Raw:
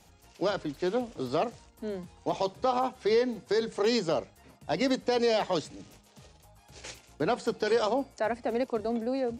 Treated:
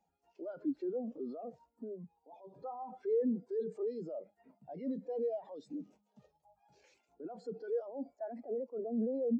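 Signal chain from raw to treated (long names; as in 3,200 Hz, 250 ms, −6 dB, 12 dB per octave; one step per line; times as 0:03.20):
drawn EQ curve 110 Hz 0 dB, 190 Hz +10 dB, 1,500 Hz +15 dB, 3,000 Hz +13 dB
brickwall limiter −30 dBFS, peak gain reduction 27.5 dB
0:01.84–0:02.53: tuned comb filter 100 Hz, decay 0.37 s, harmonics all, mix 40%
every bin expanded away from the loudest bin 2.5 to 1
level +5.5 dB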